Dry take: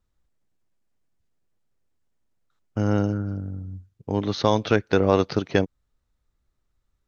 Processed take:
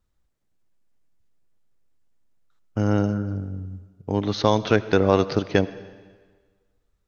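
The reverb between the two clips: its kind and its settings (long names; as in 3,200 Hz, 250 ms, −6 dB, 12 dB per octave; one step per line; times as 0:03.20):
comb and all-pass reverb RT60 1.5 s, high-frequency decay 0.95×, pre-delay 45 ms, DRR 16 dB
level +1 dB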